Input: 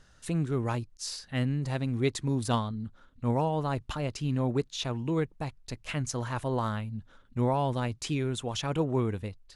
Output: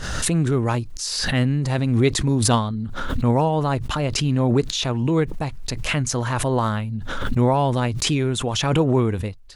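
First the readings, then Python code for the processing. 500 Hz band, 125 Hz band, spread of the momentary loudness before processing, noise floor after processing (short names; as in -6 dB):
+9.0 dB, +9.5 dB, 9 LU, -32 dBFS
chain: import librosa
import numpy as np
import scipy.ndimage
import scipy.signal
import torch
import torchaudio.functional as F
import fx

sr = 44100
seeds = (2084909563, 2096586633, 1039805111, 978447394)

y = fx.pre_swell(x, sr, db_per_s=34.0)
y = F.gain(torch.from_numpy(y), 8.5).numpy()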